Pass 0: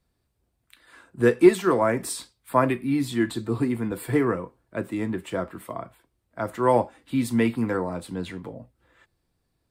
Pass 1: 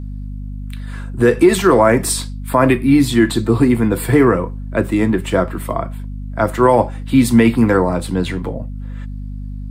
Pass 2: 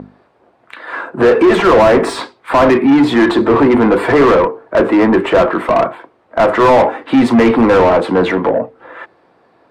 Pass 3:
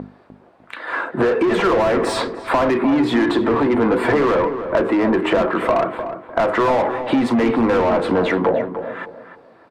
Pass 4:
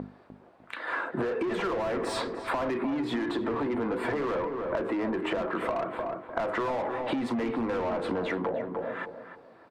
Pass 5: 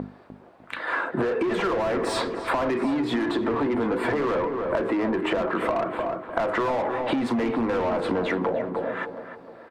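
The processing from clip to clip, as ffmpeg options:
-af "aeval=exprs='val(0)+0.0126*(sin(2*PI*50*n/s)+sin(2*PI*2*50*n/s)/2+sin(2*PI*3*50*n/s)/3+sin(2*PI*4*50*n/s)/4+sin(2*PI*5*50*n/s)/5)':c=same,alimiter=level_in=13.5dB:limit=-1dB:release=50:level=0:latency=1,volume=-1dB"
-filter_complex "[0:a]bandpass=f=730:t=q:w=0.57:csg=0,bandreject=f=50:t=h:w=6,bandreject=f=100:t=h:w=6,bandreject=f=150:t=h:w=6,bandreject=f=200:t=h:w=6,bandreject=f=250:t=h:w=6,bandreject=f=300:t=h:w=6,bandreject=f=350:t=h:w=6,bandreject=f=400:t=h:w=6,bandreject=f=450:t=h:w=6,asplit=2[a][b];[b]highpass=f=720:p=1,volume=29dB,asoftclip=type=tanh:threshold=-2dB[c];[a][c]amix=inputs=2:normalize=0,lowpass=f=1k:p=1,volume=-6dB,volume=1.5dB"
-filter_complex "[0:a]acompressor=threshold=-15dB:ratio=6,asplit=2[a][b];[b]adelay=301,lowpass=f=1.6k:p=1,volume=-9dB,asplit=2[c][d];[d]adelay=301,lowpass=f=1.6k:p=1,volume=0.3,asplit=2[e][f];[f]adelay=301,lowpass=f=1.6k:p=1,volume=0.3[g];[a][c][e][g]amix=inputs=4:normalize=0"
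-af "acompressor=threshold=-22dB:ratio=6,volume=-5.5dB"
-af "aecho=1:1:725:0.119,volume=5dB"

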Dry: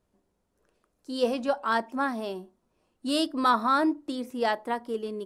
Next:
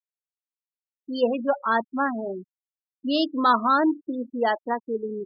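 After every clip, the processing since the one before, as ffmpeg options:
-af "afftfilt=real='re*gte(hypot(re,im),0.0501)':imag='im*gte(hypot(re,im),0.0501)':win_size=1024:overlap=0.75,volume=3.5dB"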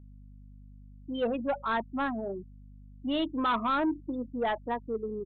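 -af "aeval=exprs='val(0)+0.00562*(sin(2*PI*50*n/s)+sin(2*PI*2*50*n/s)/2+sin(2*PI*3*50*n/s)/3+sin(2*PI*4*50*n/s)/4+sin(2*PI*5*50*n/s)/5)':c=same,aresample=8000,asoftclip=type=tanh:threshold=-18.5dB,aresample=44100,volume=-4dB"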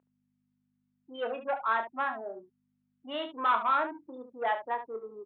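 -filter_complex "[0:a]highpass=710,lowpass=2.3k,asplit=2[a][b];[b]aecho=0:1:27|71:0.376|0.299[c];[a][c]amix=inputs=2:normalize=0,volume=2.5dB"

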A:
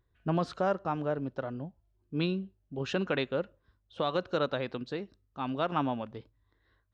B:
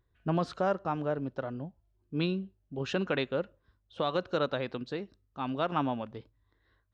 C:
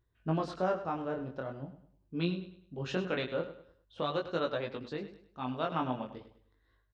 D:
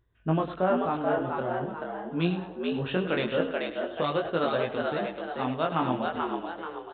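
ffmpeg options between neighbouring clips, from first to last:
-af anull
-af "flanger=delay=17.5:depth=6.8:speed=0.44,aecho=1:1:102|204|306|408:0.237|0.083|0.029|0.0102"
-filter_complex "[0:a]asplit=6[a][b][c][d][e][f];[b]adelay=434,afreqshift=82,volume=-3.5dB[g];[c]adelay=868,afreqshift=164,volume=-10.8dB[h];[d]adelay=1302,afreqshift=246,volume=-18.2dB[i];[e]adelay=1736,afreqshift=328,volume=-25.5dB[j];[f]adelay=2170,afreqshift=410,volume=-32.8dB[k];[a][g][h][i][j][k]amix=inputs=6:normalize=0,aresample=8000,aresample=44100,volume=5.5dB"

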